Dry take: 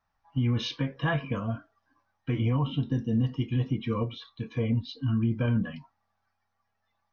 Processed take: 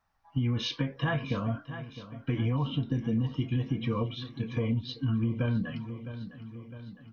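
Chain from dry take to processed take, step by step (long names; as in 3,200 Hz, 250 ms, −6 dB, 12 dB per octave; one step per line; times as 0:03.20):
repeating echo 658 ms, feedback 57%, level −16 dB
downward compressor 3 to 1, threshold −28 dBFS, peak gain reduction 6 dB
level +2 dB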